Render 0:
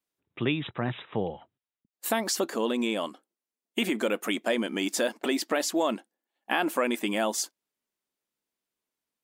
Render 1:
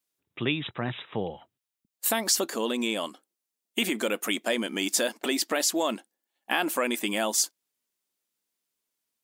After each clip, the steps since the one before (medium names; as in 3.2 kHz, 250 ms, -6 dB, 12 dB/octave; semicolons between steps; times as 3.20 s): treble shelf 3 kHz +9 dB; trim -1.5 dB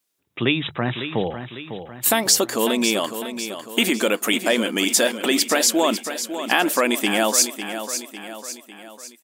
hum notches 50/100/150 Hz; feedback delay 551 ms, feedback 50%, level -10 dB; trim +7.5 dB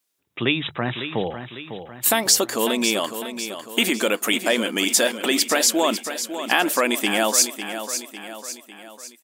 bass shelf 420 Hz -3 dB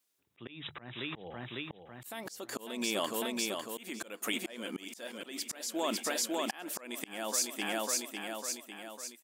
compression 4:1, threshold -23 dBFS, peak gain reduction 10 dB; slow attack 428 ms; trim -4 dB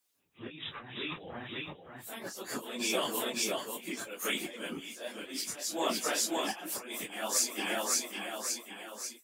phase randomisation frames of 100 ms; harmonic-percussive split percussive +8 dB; trim -3.5 dB